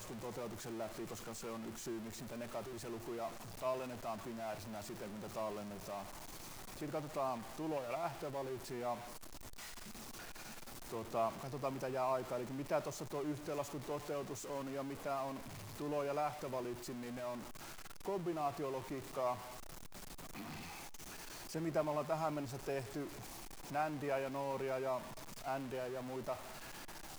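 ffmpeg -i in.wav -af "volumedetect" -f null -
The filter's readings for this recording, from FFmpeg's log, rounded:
mean_volume: -42.4 dB
max_volume: -22.6 dB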